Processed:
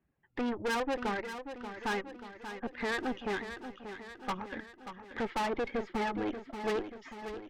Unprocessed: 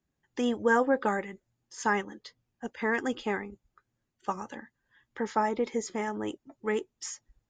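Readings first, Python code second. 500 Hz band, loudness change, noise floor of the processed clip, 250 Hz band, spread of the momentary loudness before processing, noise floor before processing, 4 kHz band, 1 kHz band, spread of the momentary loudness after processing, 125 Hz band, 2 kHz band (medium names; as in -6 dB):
-5.0 dB, -5.5 dB, -61 dBFS, -4.0 dB, 18 LU, -83 dBFS, +1.0 dB, -4.5 dB, 12 LU, -2.5 dB, -4.5 dB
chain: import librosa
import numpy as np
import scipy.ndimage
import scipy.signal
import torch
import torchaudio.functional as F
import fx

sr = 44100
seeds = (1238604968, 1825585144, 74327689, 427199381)

p1 = scipy.signal.sosfilt(scipy.signal.butter(4, 2600.0, 'lowpass', fs=sr, output='sos'), x)
p2 = fx.dereverb_blind(p1, sr, rt60_s=0.99)
p3 = fx.rider(p2, sr, range_db=5, speed_s=2.0)
p4 = fx.tube_stage(p3, sr, drive_db=35.0, bias=0.6)
p5 = p4 + fx.echo_feedback(p4, sr, ms=584, feedback_pct=56, wet_db=-10, dry=0)
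y = p5 * librosa.db_to_amplitude(5.5)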